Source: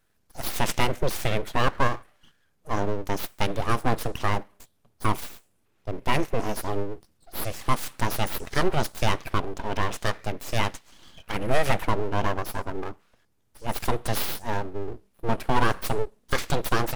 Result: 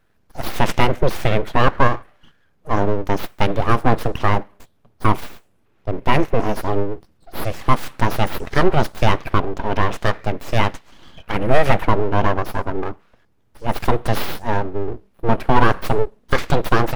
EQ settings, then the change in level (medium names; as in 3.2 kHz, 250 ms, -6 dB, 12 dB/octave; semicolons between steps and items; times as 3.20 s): treble shelf 3.7 kHz -10 dB; peaking EQ 8.5 kHz -3.5 dB 1.2 oct; +8.5 dB